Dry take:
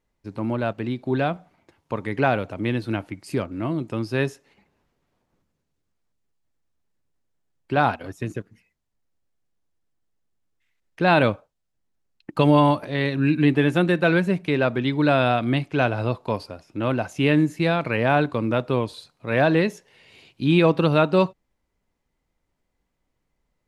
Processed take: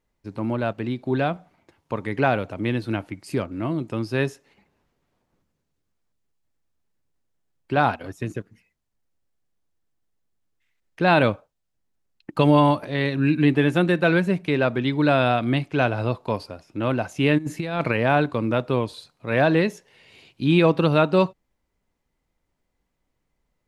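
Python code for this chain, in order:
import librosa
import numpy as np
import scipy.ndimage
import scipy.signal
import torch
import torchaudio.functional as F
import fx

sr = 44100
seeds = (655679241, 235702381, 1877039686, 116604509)

y = fx.over_compress(x, sr, threshold_db=-24.0, ratio=-0.5, at=(17.37, 17.95), fade=0.02)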